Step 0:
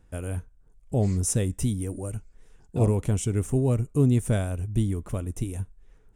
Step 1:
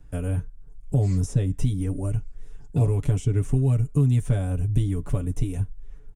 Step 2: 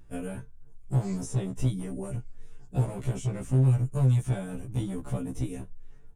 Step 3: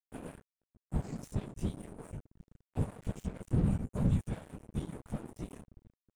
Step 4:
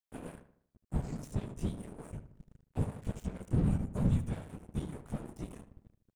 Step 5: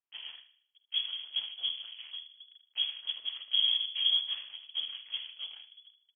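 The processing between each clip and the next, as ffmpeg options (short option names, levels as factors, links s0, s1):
-filter_complex "[0:a]lowshelf=f=150:g=11,aecho=1:1:7:0.82,acrossover=split=200|890|6000[s0][s1][s2][s3];[s0]acompressor=threshold=0.1:ratio=4[s4];[s1]acompressor=threshold=0.0316:ratio=4[s5];[s2]acompressor=threshold=0.00631:ratio=4[s6];[s3]acompressor=threshold=0.00282:ratio=4[s7];[s4][s5][s6][s7]amix=inputs=4:normalize=0"
-filter_complex "[0:a]acrossover=split=1300[s0][s1];[s0]volume=10,asoftclip=hard,volume=0.1[s2];[s2][s1]amix=inputs=2:normalize=0,afftfilt=real='re*1.73*eq(mod(b,3),0)':imag='im*1.73*eq(mod(b,3),0)':win_size=2048:overlap=0.75"
-af "afftfilt=real='hypot(re,im)*cos(2*PI*random(0))':imag='hypot(re,im)*sin(2*PI*random(1))':win_size=512:overlap=0.75,agate=range=0.0224:threshold=0.00501:ratio=3:detection=peak,aeval=exprs='sgn(val(0))*max(abs(val(0))-0.00668,0)':c=same"
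-filter_complex "[0:a]asplit=2[s0][s1];[s1]adelay=77,lowpass=f=2700:p=1,volume=0.251,asplit=2[s2][s3];[s3]adelay=77,lowpass=f=2700:p=1,volume=0.45,asplit=2[s4][s5];[s5]adelay=77,lowpass=f=2700:p=1,volume=0.45,asplit=2[s6][s7];[s7]adelay=77,lowpass=f=2700:p=1,volume=0.45,asplit=2[s8][s9];[s9]adelay=77,lowpass=f=2700:p=1,volume=0.45[s10];[s0][s2][s4][s6][s8][s10]amix=inputs=6:normalize=0"
-filter_complex "[0:a]asplit=2[s0][s1];[s1]adelay=49,volume=0.211[s2];[s0][s2]amix=inputs=2:normalize=0,lowpass=f=2900:t=q:w=0.5098,lowpass=f=2900:t=q:w=0.6013,lowpass=f=2900:t=q:w=0.9,lowpass=f=2900:t=q:w=2.563,afreqshift=-3400"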